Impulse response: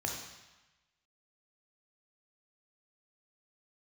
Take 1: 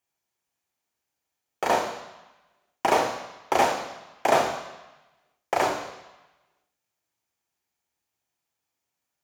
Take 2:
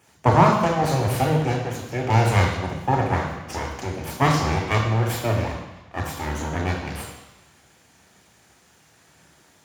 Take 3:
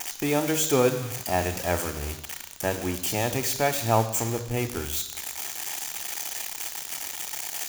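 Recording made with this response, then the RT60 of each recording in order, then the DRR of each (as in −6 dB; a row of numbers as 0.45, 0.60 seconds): 2; 1.1, 1.1, 1.1 seconds; 5.5, 1.0, 9.5 decibels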